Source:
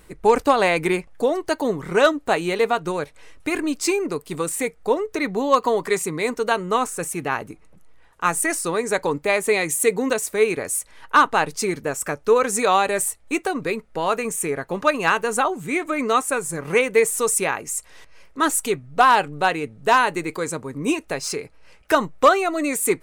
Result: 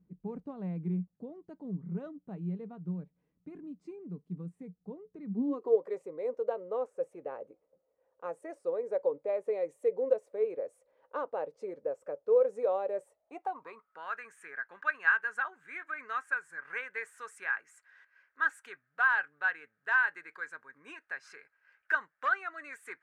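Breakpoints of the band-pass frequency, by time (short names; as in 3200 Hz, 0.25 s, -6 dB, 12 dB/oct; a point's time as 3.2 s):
band-pass, Q 9.6
5.26 s 180 Hz
5.82 s 530 Hz
13.05 s 530 Hz
14.11 s 1600 Hz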